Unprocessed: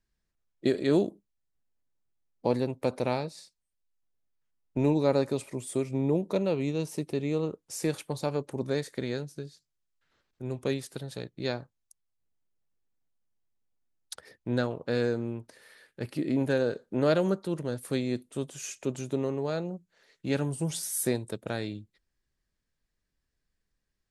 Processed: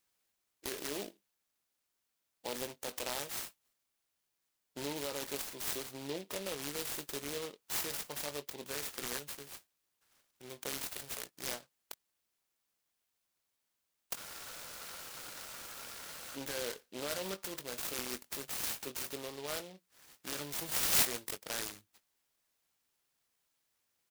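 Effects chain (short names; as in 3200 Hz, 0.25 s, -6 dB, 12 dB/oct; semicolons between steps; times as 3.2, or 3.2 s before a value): differentiator; in parallel at -0.5 dB: negative-ratio compressor -49 dBFS, ratio -0.5; on the sum: doubler 21 ms -10 dB; spectral freeze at 14.18, 2.17 s; noise-modulated delay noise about 3100 Hz, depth 0.12 ms; gain +3 dB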